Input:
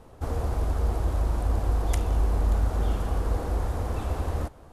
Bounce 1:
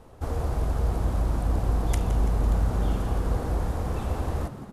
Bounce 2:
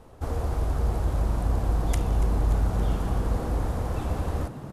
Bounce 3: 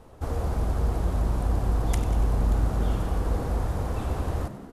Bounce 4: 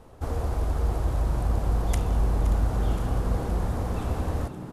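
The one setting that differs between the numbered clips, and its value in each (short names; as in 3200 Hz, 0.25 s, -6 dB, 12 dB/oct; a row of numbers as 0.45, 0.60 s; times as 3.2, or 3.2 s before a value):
frequency-shifting echo, time: 167, 285, 95, 521 ms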